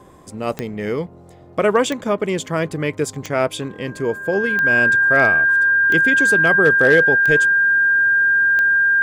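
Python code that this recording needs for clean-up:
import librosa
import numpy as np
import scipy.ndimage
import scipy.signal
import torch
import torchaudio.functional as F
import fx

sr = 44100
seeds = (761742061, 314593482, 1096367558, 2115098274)

y = fx.fix_declip(x, sr, threshold_db=-5.0)
y = fx.fix_declick_ar(y, sr, threshold=10.0)
y = fx.notch(y, sr, hz=1600.0, q=30.0)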